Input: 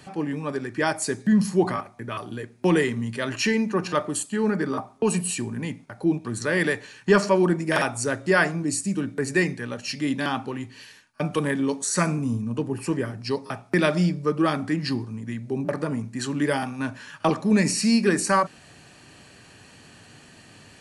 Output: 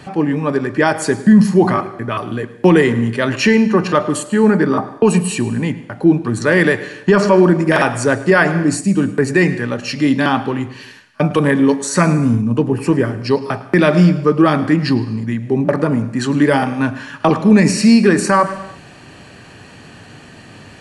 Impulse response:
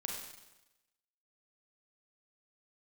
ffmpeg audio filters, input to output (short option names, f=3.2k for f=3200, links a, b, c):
-filter_complex "[0:a]highshelf=f=4.1k:g=-10.5,asplit=2[a][b];[1:a]atrim=start_sample=2205,afade=t=out:st=0.31:d=0.01,atrim=end_sample=14112,adelay=107[c];[b][c]afir=irnorm=-1:irlink=0,volume=-15.5dB[d];[a][d]amix=inputs=2:normalize=0,alimiter=level_in=12.5dB:limit=-1dB:release=50:level=0:latency=1,volume=-1dB"